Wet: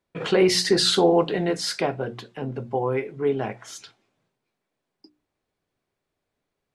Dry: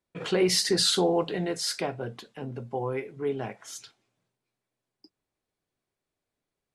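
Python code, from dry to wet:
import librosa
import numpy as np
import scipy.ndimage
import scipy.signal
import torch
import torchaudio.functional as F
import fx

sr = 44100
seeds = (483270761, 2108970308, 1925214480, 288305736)

y = fx.high_shelf(x, sr, hz=6000.0, db=-10.5)
y = fx.hum_notches(y, sr, base_hz=60, count=6)
y = y * 10.0 ** (6.5 / 20.0)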